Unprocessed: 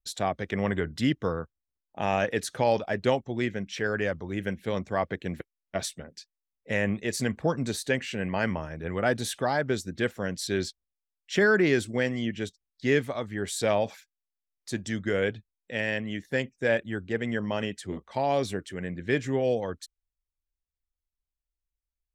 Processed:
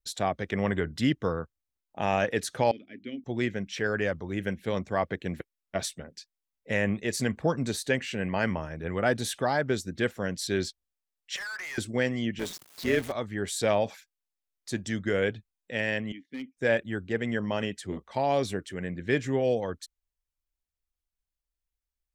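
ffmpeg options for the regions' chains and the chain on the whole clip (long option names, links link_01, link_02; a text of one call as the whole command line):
ffmpeg -i in.wav -filter_complex "[0:a]asettb=1/sr,asplit=3[link_01][link_02][link_03];[link_01]atrim=end=2.714[link_04];[link_02]atrim=start=2.71:end=3.24,asetpts=PTS-STARTPTS,afade=type=in:duration=0.004:curve=qsin,afade=type=out:start_time=0.526:duration=0.004:curve=qsin,asplit=3[link_05][link_06][link_07];[link_05]bandpass=frequency=270:width_type=q:width=8,volume=0dB[link_08];[link_06]bandpass=frequency=2290:width_type=q:width=8,volume=-6dB[link_09];[link_07]bandpass=frequency=3010:width_type=q:width=8,volume=-9dB[link_10];[link_08][link_09][link_10]amix=inputs=3:normalize=0,highshelf=frequency=5800:gain=-9.5,bandreject=frequency=50:width_type=h:width=6,bandreject=frequency=100:width_type=h:width=6,bandreject=frequency=150:width_type=h:width=6,bandreject=frequency=200:width_type=h:width=6,bandreject=frequency=250:width_type=h:width=6,bandreject=frequency=300:width_type=h:width=6,bandreject=frequency=350:width_type=h:width=6[link_11];[link_03]atrim=start=3.236[link_12];[link_04][link_11]acrossfade=duration=0.004:curve1=hsin:curve2=qsin[link_13];[link_13][link_12]acrossfade=duration=0.004:curve1=qsin:curve2=hsin,asettb=1/sr,asplit=3[link_14][link_15][link_16];[link_14]atrim=end=11.364[link_17];[link_15]atrim=start=11.36:end=11.78,asetpts=PTS-STARTPTS,afade=type=in:duration=0.004:curve=qsin,afade=type=out:start_time=0.416:duration=0.004:curve=qsin,highpass=frequency=880:width=0.5412,highpass=frequency=880:width=1.3066,acompressor=threshold=-28dB:ratio=5:attack=3.2:release=140:knee=1:detection=peak,volume=35dB,asoftclip=hard,volume=-35dB[link_18];[link_16]atrim=start=11.776[link_19];[link_17][link_18]acrossfade=duration=0.004:curve1=hsin:curve2=qsin[link_20];[link_20][link_19]acrossfade=duration=0.004:curve1=qsin:curve2=hsin,asettb=1/sr,asplit=3[link_21][link_22][link_23];[link_21]atrim=end=12.394[link_24];[link_22]atrim=start=12.39:end=13.12,asetpts=PTS-STARTPTS,afade=type=in:duration=0.004:curve=qsin,afade=type=out:start_time=0.726:duration=0.004:curve=qsin,aeval=exprs='val(0)+0.5*0.0251*sgn(val(0))':channel_layout=same,highpass=170,tremolo=f=170:d=0.621[link_25];[link_23]atrim=start=13.116[link_26];[link_24][link_25]acrossfade=duration=0.004:curve1=hsin:curve2=qsin[link_27];[link_27][link_26]acrossfade=duration=0.004:curve1=qsin:curve2=hsin,asettb=1/sr,asplit=3[link_28][link_29][link_30];[link_28]atrim=end=16.124[link_31];[link_29]atrim=start=16.12:end=16.57,asetpts=PTS-STARTPTS,afade=type=in:duration=0.004:curve=qsin,afade=type=out:start_time=0.446:duration=0.004:curve=qsin,asplit=3[link_32][link_33][link_34];[link_32]bandpass=frequency=270:width_type=q:width=8,volume=0dB[link_35];[link_33]bandpass=frequency=2290:width_type=q:width=8,volume=-6dB[link_36];[link_34]bandpass=frequency=3010:width_type=q:width=8,volume=-9dB[link_37];[link_35][link_36][link_37]amix=inputs=3:normalize=0,asoftclip=type=hard:threshold=-31dB[link_38];[link_30]atrim=start=16.566[link_39];[link_31][link_38]acrossfade=duration=0.004:curve1=hsin:curve2=qsin[link_40];[link_40][link_39]acrossfade=duration=0.004:curve1=qsin:curve2=hsin" out.wav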